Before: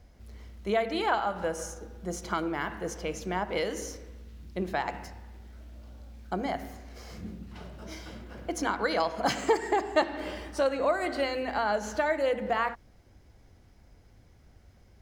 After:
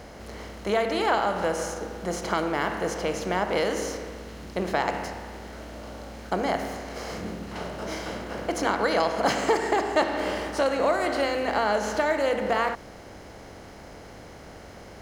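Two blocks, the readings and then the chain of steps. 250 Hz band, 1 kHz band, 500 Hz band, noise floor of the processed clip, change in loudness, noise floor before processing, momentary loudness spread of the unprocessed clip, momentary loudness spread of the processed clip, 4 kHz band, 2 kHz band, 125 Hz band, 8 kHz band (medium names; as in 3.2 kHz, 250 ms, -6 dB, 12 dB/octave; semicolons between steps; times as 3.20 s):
+4.0 dB, +4.5 dB, +4.5 dB, -45 dBFS, +3.5 dB, -58 dBFS, 21 LU, 21 LU, +5.0 dB, +4.5 dB, +4.0 dB, +4.0 dB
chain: spectral levelling over time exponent 0.6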